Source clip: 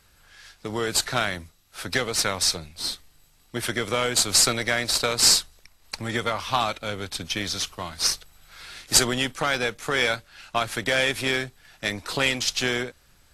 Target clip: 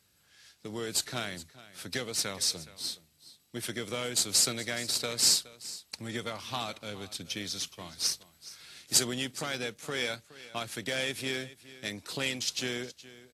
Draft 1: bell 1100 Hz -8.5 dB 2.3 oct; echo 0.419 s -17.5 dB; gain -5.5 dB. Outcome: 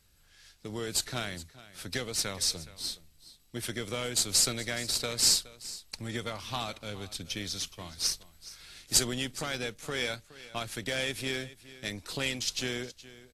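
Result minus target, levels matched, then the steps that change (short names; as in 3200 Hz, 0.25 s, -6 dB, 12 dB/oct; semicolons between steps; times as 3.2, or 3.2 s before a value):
125 Hz band +3.0 dB
add first: HPF 120 Hz 12 dB/oct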